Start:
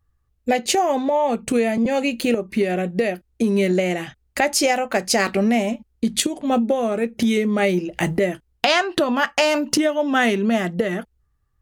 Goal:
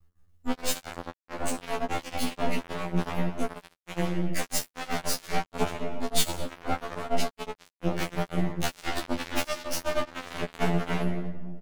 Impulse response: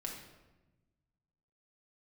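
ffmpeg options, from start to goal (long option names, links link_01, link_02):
-filter_complex "[0:a]equalizer=frequency=1200:width=0.81:gain=-3,aeval=exprs='0.596*(cos(1*acos(clip(val(0)/0.596,-1,1)))-cos(1*PI/2))+0.188*(cos(4*acos(clip(val(0)/0.596,-1,1)))-cos(4*PI/2))':channel_layout=same,asplit=2[link_01][link_02];[link_02]adelay=13,volume=-9.5dB[link_03];[link_01][link_03]amix=inputs=2:normalize=0,asplit=2[link_04][link_05];[1:a]atrim=start_sample=2205,adelay=16[link_06];[link_05][link_06]afir=irnorm=-1:irlink=0,volume=-2dB[link_07];[link_04][link_07]amix=inputs=2:normalize=0,aeval=exprs='max(val(0),0)':channel_layout=same,afftfilt=real='re*2*eq(mod(b,4),0)':imag='im*2*eq(mod(b,4),0)':win_size=2048:overlap=0.75,volume=5dB"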